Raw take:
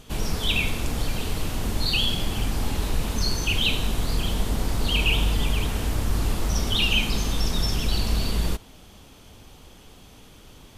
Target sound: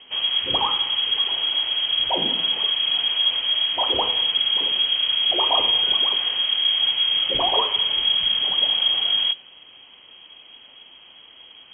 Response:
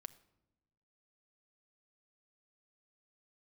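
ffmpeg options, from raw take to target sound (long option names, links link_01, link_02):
-af "bandreject=frequency=212.4:width_type=h:width=4,bandreject=frequency=424.8:width_type=h:width=4,bandreject=frequency=637.2:width_type=h:width=4,bandreject=frequency=849.6:width_type=h:width=4,bandreject=frequency=1062:width_type=h:width=4,bandreject=frequency=1274.4:width_type=h:width=4,bandreject=frequency=1486.8:width_type=h:width=4,bandreject=frequency=1699.2:width_type=h:width=4,bandreject=frequency=1911.6:width_type=h:width=4,bandreject=frequency=2124:width_type=h:width=4,bandreject=frequency=2336.4:width_type=h:width=4,bandreject=frequency=2548.8:width_type=h:width=4,bandreject=frequency=2761.2:width_type=h:width=4,bandreject=frequency=2973.6:width_type=h:width=4,bandreject=frequency=3186:width_type=h:width=4,bandreject=frequency=3398.4:width_type=h:width=4,bandreject=frequency=3610.8:width_type=h:width=4,bandreject=frequency=3823.2:width_type=h:width=4,bandreject=frequency=4035.6:width_type=h:width=4,bandreject=frequency=4248:width_type=h:width=4,bandreject=frequency=4460.4:width_type=h:width=4,bandreject=frequency=4672.8:width_type=h:width=4,bandreject=frequency=4885.2:width_type=h:width=4,bandreject=frequency=5097.6:width_type=h:width=4,bandreject=frequency=5310:width_type=h:width=4,bandreject=frequency=5522.4:width_type=h:width=4,bandreject=frequency=5734.8:width_type=h:width=4,bandreject=frequency=5947.2:width_type=h:width=4,bandreject=frequency=6159.6:width_type=h:width=4,bandreject=frequency=6372:width_type=h:width=4,bandreject=frequency=6584.4:width_type=h:width=4,bandreject=frequency=6796.8:width_type=h:width=4,bandreject=frequency=7009.2:width_type=h:width=4,bandreject=frequency=7221.6:width_type=h:width=4,bandreject=frequency=7434:width_type=h:width=4,asetrate=40517,aresample=44100,lowpass=frequency=2800:width_type=q:width=0.5098,lowpass=frequency=2800:width_type=q:width=0.6013,lowpass=frequency=2800:width_type=q:width=0.9,lowpass=frequency=2800:width_type=q:width=2.563,afreqshift=-3300,volume=1.5dB"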